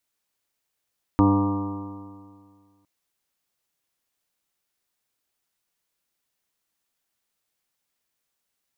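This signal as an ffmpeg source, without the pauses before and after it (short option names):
-f lavfi -i "aevalsrc='0.106*pow(10,-3*t/1.98)*sin(2*PI*97.89*t)+0.0668*pow(10,-3*t/1.98)*sin(2*PI*196.3*t)+0.188*pow(10,-3*t/1.98)*sin(2*PI*295.77*t)+0.0237*pow(10,-3*t/1.98)*sin(2*PI*396.79*t)+0.0355*pow(10,-3*t/1.98)*sin(2*PI*499.88*t)+0.0126*pow(10,-3*t/1.98)*sin(2*PI*605.51*t)+0.0237*pow(10,-3*t/1.98)*sin(2*PI*714.15*t)+0.0211*pow(10,-3*t/1.98)*sin(2*PI*826.24*t)+0.0596*pow(10,-3*t/1.98)*sin(2*PI*942.18*t)+0.0224*pow(10,-3*t/1.98)*sin(2*PI*1062.38*t)+0.0447*pow(10,-3*t/1.98)*sin(2*PI*1187.19*t)':d=1.66:s=44100"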